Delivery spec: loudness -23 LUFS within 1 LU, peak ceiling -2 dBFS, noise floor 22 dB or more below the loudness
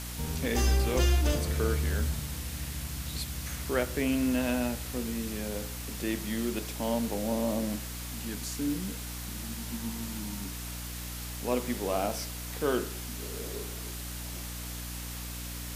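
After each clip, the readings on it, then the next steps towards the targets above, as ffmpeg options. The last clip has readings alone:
hum 60 Hz; highest harmonic 300 Hz; hum level -38 dBFS; noise floor -39 dBFS; noise floor target -55 dBFS; loudness -32.5 LUFS; peak level -13.5 dBFS; loudness target -23.0 LUFS
-> -af "bandreject=f=60:t=h:w=6,bandreject=f=120:t=h:w=6,bandreject=f=180:t=h:w=6,bandreject=f=240:t=h:w=6,bandreject=f=300:t=h:w=6"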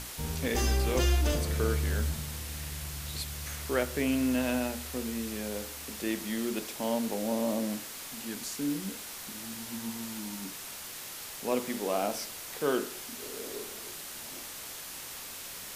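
hum not found; noise floor -43 dBFS; noise floor target -55 dBFS
-> -af "afftdn=nr=12:nf=-43"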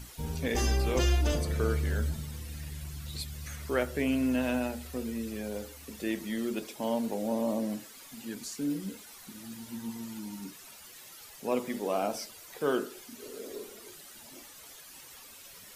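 noise floor -51 dBFS; noise floor target -55 dBFS
-> -af "afftdn=nr=6:nf=-51"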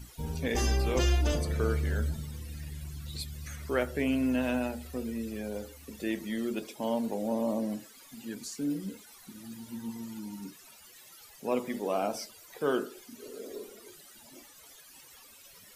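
noise floor -54 dBFS; noise floor target -55 dBFS
-> -af "afftdn=nr=6:nf=-54"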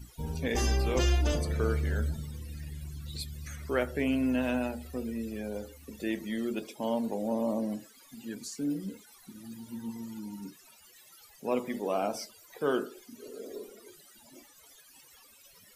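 noise floor -58 dBFS; loudness -33.0 LUFS; peak level -14.0 dBFS; loudness target -23.0 LUFS
-> -af "volume=3.16"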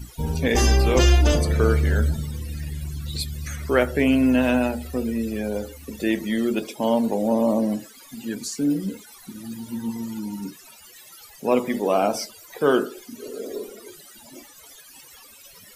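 loudness -23.0 LUFS; peak level -4.0 dBFS; noise floor -48 dBFS

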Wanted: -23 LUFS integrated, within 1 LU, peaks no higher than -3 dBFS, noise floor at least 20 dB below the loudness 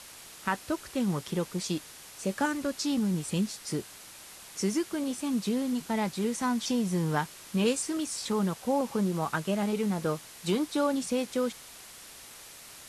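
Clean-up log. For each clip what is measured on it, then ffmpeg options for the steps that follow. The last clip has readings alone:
noise floor -49 dBFS; noise floor target -51 dBFS; loudness -30.5 LUFS; peak level -14.0 dBFS; loudness target -23.0 LUFS
-> -af "afftdn=nr=6:nf=-49"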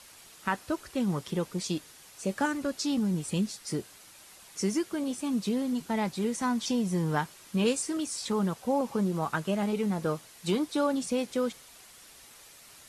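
noise floor -53 dBFS; loudness -30.5 LUFS; peak level -14.0 dBFS; loudness target -23.0 LUFS
-> -af "volume=2.37"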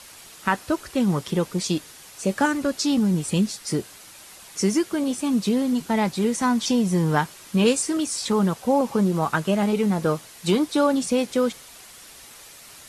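loudness -23.0 LUFS; peak level -6.5 dBFS; noise floor -46 dBFS

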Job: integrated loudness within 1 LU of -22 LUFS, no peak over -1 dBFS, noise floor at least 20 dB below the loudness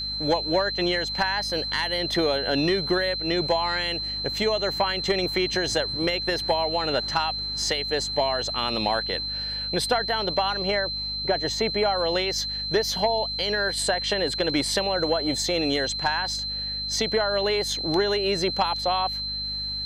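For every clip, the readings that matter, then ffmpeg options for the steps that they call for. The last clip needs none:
hum 50 Hz; highest harmonic 250 Hz; hum level -38 dBFS; steady tone 4.1 kHz; tone level -28 dBFS; loudness -24.0 LUFS; peak level -12.0 dBFS; loudness target -22.0 LUFS
-> -af "bandreject=f=50:t=h:w=4,bandreject=f=100:t=h:w=4,bandreject=f=150:t=h:w=4,bandreject=f=200:t=h:w=4,bandreject=f=250:t=h:w=4"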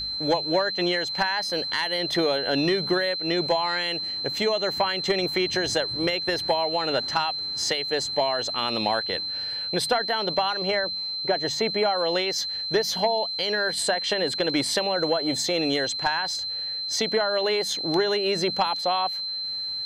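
hum not found; steady tone 4.1 kHz; tone level -28 dBFS
-> -af "bandreject=f=4100:w=30"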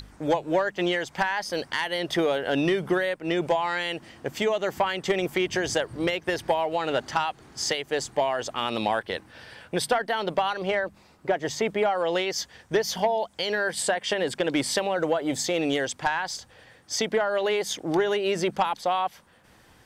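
steady tone not found; loudness -26.5 LUFS; peak level -13.0 dBFS; loudness target -22.0 LUFS
-> -af "volume=1.68"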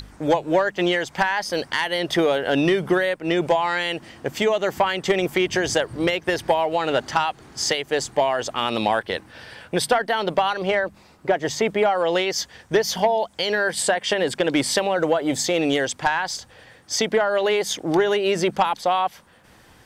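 loudness -22.0 LUFS; peak level -8.5 dBFS; noise floor -52 dBFS

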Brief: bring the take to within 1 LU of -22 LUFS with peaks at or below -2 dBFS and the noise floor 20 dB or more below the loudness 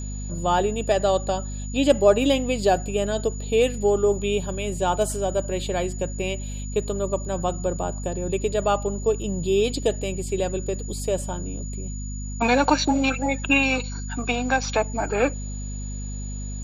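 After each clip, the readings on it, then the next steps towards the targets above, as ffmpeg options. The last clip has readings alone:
hum 50 Hz; highest harmonic 250 Hz; hum level -29 dBFS; steady tone 6.9 kHz; tone level -39 dBFS; loudness -24.0 LUFS; peak level -4.5 dBFS; loudness target -22.0 LUFS
-> -af "bandreject=f=50:t=h:w=4,bandreject=f=100:t=h:w=4,bandreject=f=150:t=h:w=4,bandreject=f=200:t=h:w=4,bandreject=f=250:t=h:w=4"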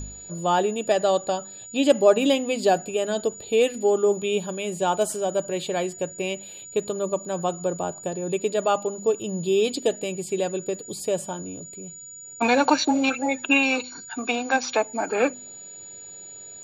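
hum not found; steady tone 6.9 kHz; tone level -39 dBFS
-> -af "bandreject=f=6900:w=30"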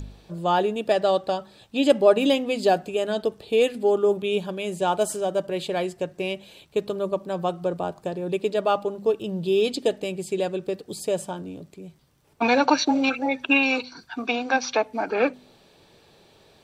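steady tone not found; loudness -24.0 LUFS; peak level -4.5 dBFS; loudness target -22.0 LUFS
-> -af "volume=1.26"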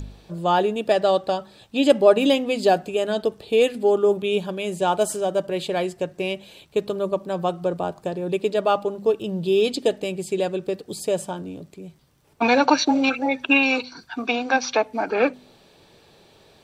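loudness -22.0 LUFS; peak level -2.5 dBFS; noise floor -55 dBFS

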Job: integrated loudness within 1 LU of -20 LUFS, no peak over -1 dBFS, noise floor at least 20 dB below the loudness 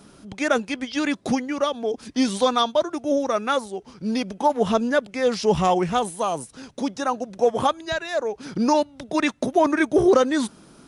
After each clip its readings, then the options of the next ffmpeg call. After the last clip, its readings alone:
loudness -23.0 LUFS; peak level -5.0 dBFS; loudness target -20.0 LUFS
-> -af "volume=1.41"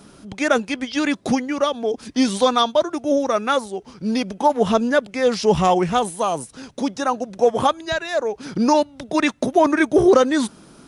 loudness -20.0 LUFS; peak level -2.0 dBFS; noise floor -48 dBFS

